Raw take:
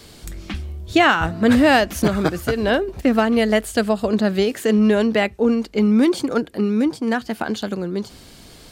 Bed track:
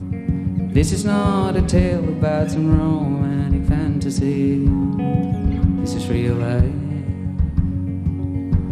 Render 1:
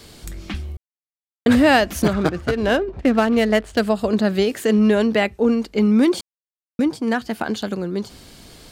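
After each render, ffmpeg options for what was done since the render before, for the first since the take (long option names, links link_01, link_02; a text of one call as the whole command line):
ffmpeg -i in.wav -filter_complex "[0:a]asettb=1/sr,asplit=3[link_01][link_02][link_03];[link_01]atrim=end=2.134[link_04];[link_02]atrim=start=2.13:end=3.8,asetpts=PTS-STARTPTS,afade=type=in:duration=0.004:curve=qsin,afade=type=out:start_time=1.666:duration=0.004:curve=qsin,adynamicsmooth=sensitivity=4.5:basefreq=2100[link_05];[link_03]atrim=start=3.796[link_06];[link_04][link_05]acrossfade=duration=0.004:curve1=hsin:curve2=qsin[link_07];[link_07][link_06]acrossfade=duration=0.004:curve1=qsin:curve2=hsin,asplit=5[link_08][link_09][link_10][link_11][link_12];[link_08]atrim=end=0.77,asetpts=PTS-STARTPTS,afade=type=out:start_time=0.766:duration=0.004:curve=hsin[link_13];[link_09]atrim=start=0.77:end=1.46,asetpts=PTS-STARTPTS,volume=0[link_14];[link_10]atrim=start=1.46:end=6.21,asetpts=PTS-STARTPTS,afade=type=in:duration=0.004:curve=hsin,afade=type=out:start_time=4.746:duration=0.004:curve=hsin[link_15];[link_11]atrim=start=6.21:end=6.79,asetpts=PTS-STARTPTS,volume=0[link_16];[link_12]atrim=start=6.79,asetpts=PTS-STARTPTS,afade=type=in:duration=0.004:curve=hsin[link_17];[link_13][link_14][link_15][link_16][link_17]concat=n=5:v=0:a=1" out.wav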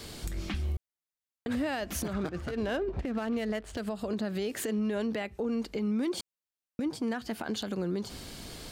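ffmpeg -i in.wav -af "acompressor=threshold=-24dB:ratio=10,alimiter=limit=-24dB:level=0:latency=1:release=118" out.wav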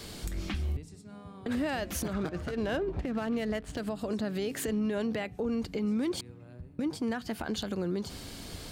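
ffmpeg -i in.wav -i bed.wav -filter_complex "[1:a]volume=-30dB[link_01];[0:a][link_01]amix=inputs=2:normalize=0" out.wav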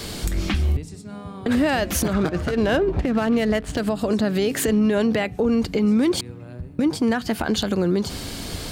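ffmpeg -i in.wav -af "volume=11.5dB" out.wav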